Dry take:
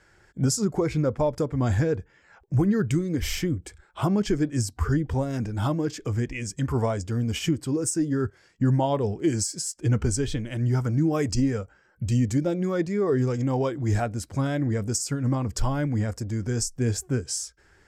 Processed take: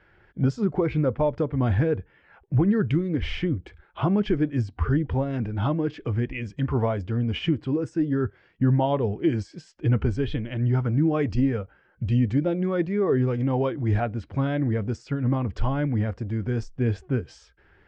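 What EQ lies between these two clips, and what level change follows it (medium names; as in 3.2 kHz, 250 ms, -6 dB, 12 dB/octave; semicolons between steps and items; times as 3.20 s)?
Chebyshev low-pass 3.1 kHz, order 3; +1.0 dB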